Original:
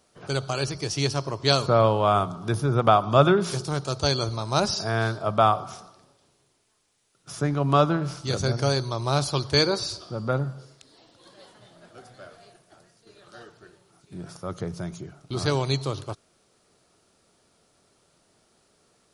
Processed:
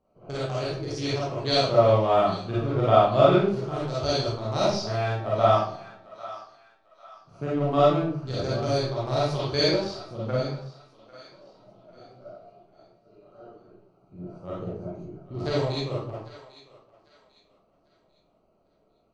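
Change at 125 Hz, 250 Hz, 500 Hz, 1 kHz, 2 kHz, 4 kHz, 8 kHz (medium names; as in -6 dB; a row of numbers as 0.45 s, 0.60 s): -2.5 dB, -0.5 dB, +2.0 dB, -1.5 dB, -4.5 dB, -3.0 dB, -9.0 dB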